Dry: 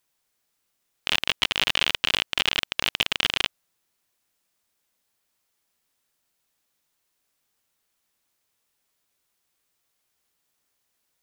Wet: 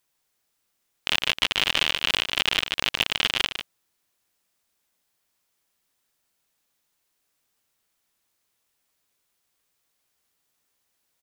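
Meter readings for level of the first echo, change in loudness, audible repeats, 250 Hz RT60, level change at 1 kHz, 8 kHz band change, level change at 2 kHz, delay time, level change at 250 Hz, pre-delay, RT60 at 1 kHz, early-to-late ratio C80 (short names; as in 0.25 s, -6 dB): -8.5 dB, +0.5 dB, 1, none, +0.5 dB, +0.5 dB, +0.5 dB, 0.149 s, +0.5 dB, none, none, none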